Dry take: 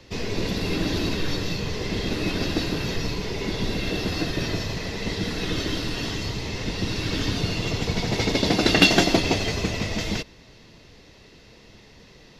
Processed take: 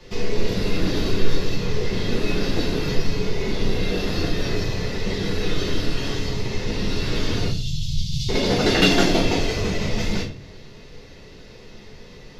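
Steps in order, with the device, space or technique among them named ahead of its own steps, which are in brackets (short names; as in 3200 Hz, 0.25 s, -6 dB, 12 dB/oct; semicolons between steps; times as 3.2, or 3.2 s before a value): 7.48–8.29 Chebyshev band-stop 160–3200 Hz, order 4; shoebox room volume 32 m³, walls mixed, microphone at 0.91 m; parallel compression (in parallel at -3 dB: compressor, threshold -28 dBFS, peak gain reduction 23 dB); on the sum: gain -6 dB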